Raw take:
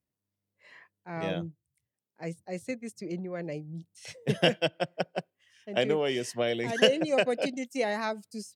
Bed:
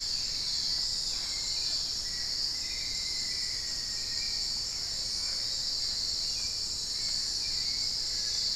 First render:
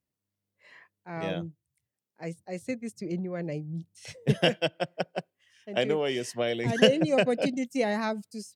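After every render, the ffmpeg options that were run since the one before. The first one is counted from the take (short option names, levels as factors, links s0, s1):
-filter_complex "[0:a]asettb=1/sr,asplit=3[s0][s1][s2];[s0]atrim=end=2.654[s3];[s1]atrim=start=2.65:end=4.33,asetpts=PTS-STARTPTS,afade=t=in:d=0.004:c=qsin,afade=t=out:st=1.676:d=0.004:c=qsin,lowshelf=f=200:g=8[s4];[s2]atrim=start=4.326[s5];[s3][s4]acrossfade=d=0.004:c1=hsin:c2=qsin[s6];[s6][s5]acrossfade=d=0.004:c1=qsin:c2=hsin,asettb=1/sr,asplit=3[s7][s8][s9];[s7]atrim=end=6.654[s10];[s8]atrim=start=6.65:end=8.22,asetpts=PTS-STARTPTS,afade=t=in:d=0.004:c=qsin,afade=t=out:st=1.566:d=0.004:c=qsin,equalizer=f=130:t=o:w=1.9:g=11[s11];[s9]atrim=start=8.216[s12];[s10][s11]acrossfade=d=0.004:c1=hsin:c2=qsin[s13];[s13][s12]acrossfade=d=0.004:c1=qsin:c2=hsin"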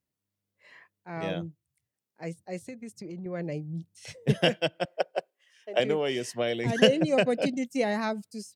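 -filter_complex "[0:a]asettb=1/sr,asplit=3[s0][s1][s2];[s0]atrim=end=2.604[s3];[s1]atrim=start=2.6:end=3.26,asetpts=PTS-STARTPTS,afade=t=in:d=0.004:c=qsin,afade=t=out:st=0.656:d=0.004:c=qsin,acompressor=threshold=0.0158:ratio=6:attack=3.2:release=140:knee=1:detection=peak[s4];[s2]atrim=start=3.256[s5];[s3][s4]acrossfade=d=0.004:c1=hsin:c2=qsin[s6];[s6][s5]acrossfade=d=0.004:c1=qsin:c2=hsin,asettb=1/sr,asplit=3[s7][s8][s9];[s7]atrim=end=4.854[s10];[s8]atrim=start=4.85:end=5.8,asetpts=PTS-STARTPTS,afade=t=in:d=0.004:c=qsin,afade=t=out:st=0.946:d=0.004:c=qsin,highpass=f=480:t=q:w=1.6[s11];[s9]atrim=start=5.796[s12];[s10][s11]acrossfade=d=0.004:c1=hsin:c2=qsin[s13];[s13][s12]acrossfade=d=0.004:c1=qsin:c2=hsin"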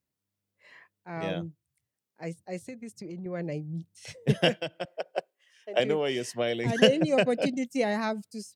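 -filter_complex "[0:a]asettb=1/sr,asplit=3[s0][s1][s2];[s0]atrim=end=4.574[s3];[s1]atrim=start=4.57:end=5.18,asetpts=PTS-STARTPTS,afade=t=in:d=0.004:c=qsin,afade=t=out:st=0.606:d=0.004:c=qsin,acompressor=threshold=0.0398:ratio=4:attack=3.2:release=140:knee=1:detection=peak[s4];[s2]atrim=start=5.176[s5];[s3][s4]acrossfade=d=0.004:c1=hsin:c2=qsin[s6];[s6][s5]acrossfade=d=0.004:c1=qsin:c2=hsin"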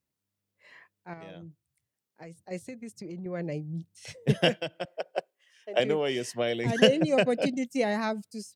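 -filter_complex "[0:a]asettb=1/sr,asplit=3[s0][s1][s2];[s0]atrim=end=1.134[s3];[s1]atrim=start=1.13:end=2.51,asetpts=PTS-STARTPTS,afade=t=in:d=0.004:c=qsin,afade=t=out:st=1.376:d=0.004:c=qsin,acompressor=threshold=0.01:ratio=12:attack=3.2:release=140:knee=1:detection=peak[s4];[s2]atrim=start=2.506[s5];[s3][s4]acrossfade=d=0.004:c1=hsin:c2=qsin[s6];[s6][s5]acrossfade=d=0.004:c1=qsin:c2=hsin"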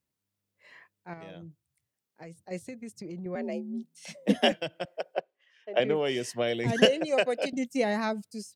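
-filter_complex "[0:a]asettb=1/sr,asplit=3[s0][s1][s2];[s0]atrim=end=3.354[s3];[s1]atrim=start=3.35:end=4.52,asetpts=PTS-STARTPTS,afade=t=in:d=0.004:c=qsin,afade=t=out:st=1.166:d=0.004:c=qsin,afreqshift=63[s4];[s2]atrim=start=4.516[s5];[s3][s4]acrossfade=d=0.004:c1=hsin:c2=qsin[s6];[s6][s5]acrossfade=d=0.004:c1=qsin:c2=hsin,asplit=3[s7][s8][s9];[s7]afade=t=out:st=5.14:d=0.02[s10];[s8]highpass=100,lowpass=3400,afade=t=in:st=5.14:d=0.02,afade=t=out:st=5.94:d=0.02[s11];[s9]afade=t=in:st=5.94:d=0.02[s12];[s10][s11][s12]amix=inputs=3:normalize=0,asettb=1/sr,asplit=3[s13][s14][s15];[s13]atrim=end=6.854[s16];[s14]atrim=start=6.85:end=7.53,asetpts=PTS-STARTPTS,afade=t=in:d=0.004:c=qsin,afade=t=out:st=0.676:d=0.004:c=qsin,highpass=430[s17];[s15]atrim=start=7.526[s18];[s16][s17]acrossfade=d=0.004:c1=hsin:c2=qsin[s19];[s19][s18]acrossfade=d=0.004:c1=qsin:c2=hsin"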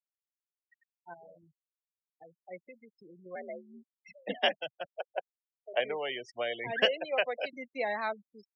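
-filter_complex "[0:a]afftfilt=real='re*gte(hypot(re,im),0.0224)':imag='im*gte(hypot(re,im),0.0224)':win_size=1024:overlap=0.75,acrossover=split=570 4000:gain=0.112 1 0.0708[s0][s1][s2];[s0][s1][s2]amix=inputs=3:normalize=0"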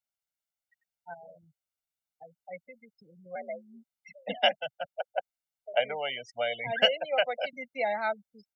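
-af "aecho=1:1:1.4:0.85"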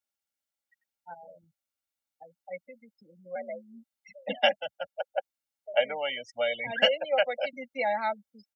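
-af "highpass=51,aecho=1:1:3.6:0.56"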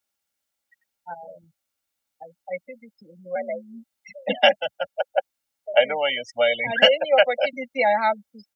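-af "volume=2.66,alimiter=limit=0.708:level=0:latency=1"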